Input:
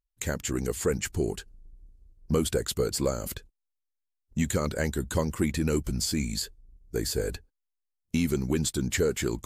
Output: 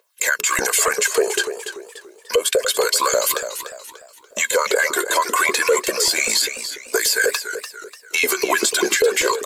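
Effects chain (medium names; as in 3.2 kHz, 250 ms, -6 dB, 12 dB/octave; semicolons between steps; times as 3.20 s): high-pass 230 Hz 24 dB/octave; hum notches 60/120/180/240/300/360/420 Hz; LFO high-pass saw up 5.1 Hz 420–2500 Hz; compression 6:1, threshold -37 dBFS, peak gain reduction 18.5 dB; phaser 0.29 Hz, delay 3.1 ms, feedback 49%; comb 1.9 ms, depth 53%; loudness maximiser +32.5 dB; modulated delay 291 ms, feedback 38%, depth 121 cents, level -10 dB; trim -7 dB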